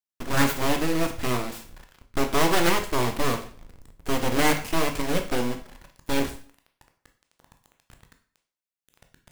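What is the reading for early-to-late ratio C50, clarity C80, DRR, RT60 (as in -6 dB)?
11.0 dB, 15.0 dB, 5.0 dB, 0.45 s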